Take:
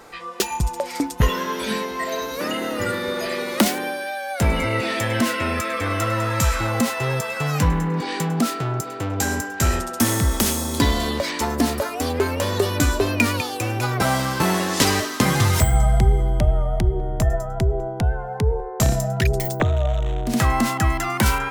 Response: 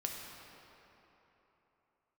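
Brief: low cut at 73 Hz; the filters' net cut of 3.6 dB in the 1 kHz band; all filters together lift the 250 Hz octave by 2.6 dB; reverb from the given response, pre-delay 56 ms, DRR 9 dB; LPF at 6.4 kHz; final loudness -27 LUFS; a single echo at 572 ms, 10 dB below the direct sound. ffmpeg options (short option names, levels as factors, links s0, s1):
-filter_complex "[0:a]highpass=73,lowpass=6400,equalizer=f=250:t=o:g=3.5,equalizer=f=1000:t=o:g=-5,aecho=1:1:572:0.316,asplit=2[s0][s1];[1:a]atrim=start_sample=2205,adelay=56[s2];[s1][s2]afir=irnorm=-1:irlink=0,volume=0.316[s3];[s0][s3]amix=inputs=2:normalize=0,volume=0.562"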